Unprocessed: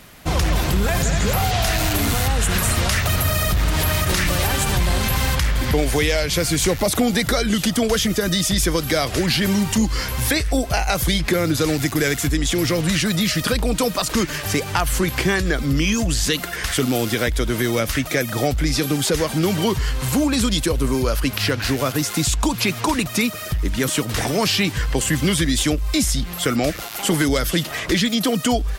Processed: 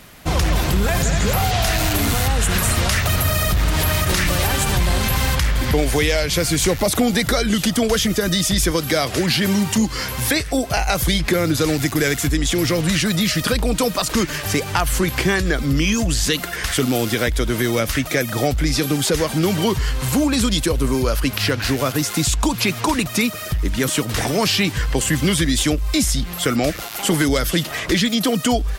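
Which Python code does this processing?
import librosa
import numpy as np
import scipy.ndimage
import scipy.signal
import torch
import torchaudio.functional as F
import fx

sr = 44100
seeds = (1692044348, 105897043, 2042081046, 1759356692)

y = fx.highpass(x, sr, hz=87.0, slope=12, at=(8.71, 10.77))
y = y * librosa.db_to_amplitude(1.0)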